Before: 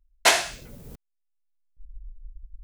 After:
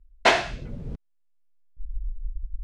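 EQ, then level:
low-pass filter 3,500 Hz 12 dB per octave
low-shelf EQ 430 Hz +10.5 dB
0.0 dB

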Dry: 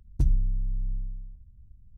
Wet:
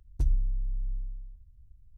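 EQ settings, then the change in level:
parametric band 180 Hz −10.5 dB 1.3 octaves
−2.0 dB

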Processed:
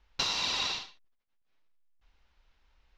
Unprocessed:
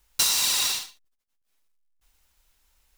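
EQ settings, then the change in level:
dynamic equaliser 1,700 Hz, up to −5 dB, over −45 dBFS, Q 1.5
moving average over 5 samples
high-frequency loss of the air 110 metres
+1.5 dB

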